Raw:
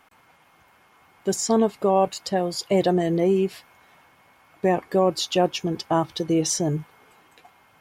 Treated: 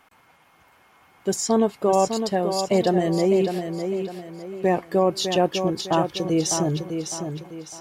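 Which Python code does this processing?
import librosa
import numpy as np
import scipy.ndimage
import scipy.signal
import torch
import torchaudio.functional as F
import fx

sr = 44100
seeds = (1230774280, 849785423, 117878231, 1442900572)

y = fx.echo_feedback(x, sr, ms=605, feedback_pct=37, wet_db=-7)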